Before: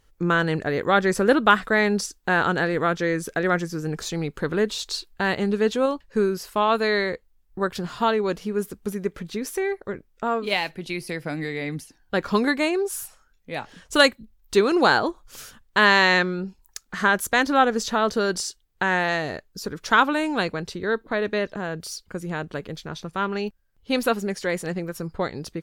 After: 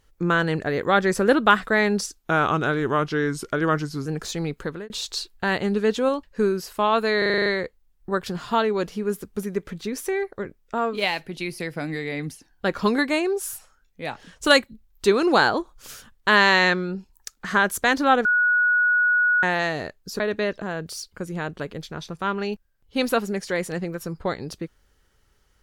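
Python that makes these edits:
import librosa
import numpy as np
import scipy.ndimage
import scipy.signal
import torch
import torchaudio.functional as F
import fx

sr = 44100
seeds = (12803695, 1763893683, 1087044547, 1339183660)

y = fx.edit(x, sr, fx.speed_span(start_s=2.15, length_s=1.68, speed=0.88),
    fx.fade_out_span(start_s=4.33, length_s=0.34),
    fx.stutter(start_s=6.95, slice_s=0.04, count=8),
    fx.bleep(start_s=17.74, length_s=1.18, hz=1460.0, db=-16.0),
    fx.cut(start_s=19.69, length_s=1.45), tone=tone)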